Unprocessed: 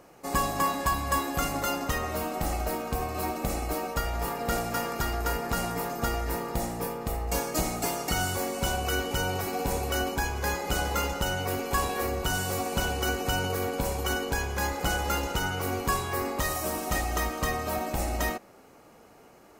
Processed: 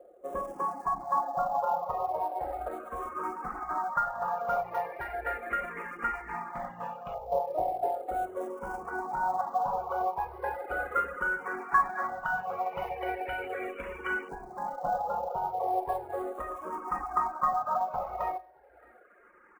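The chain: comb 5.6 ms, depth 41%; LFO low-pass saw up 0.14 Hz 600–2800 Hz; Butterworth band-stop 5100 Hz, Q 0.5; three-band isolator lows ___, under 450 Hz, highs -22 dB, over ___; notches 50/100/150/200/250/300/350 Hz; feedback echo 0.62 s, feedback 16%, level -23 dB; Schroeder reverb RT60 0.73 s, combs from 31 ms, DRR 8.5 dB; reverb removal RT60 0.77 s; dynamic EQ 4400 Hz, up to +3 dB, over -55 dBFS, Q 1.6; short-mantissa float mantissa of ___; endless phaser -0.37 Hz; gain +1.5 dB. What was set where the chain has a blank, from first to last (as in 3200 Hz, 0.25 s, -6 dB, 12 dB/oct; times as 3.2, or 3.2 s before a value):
-15 dB, 7100 Hz, 4-bit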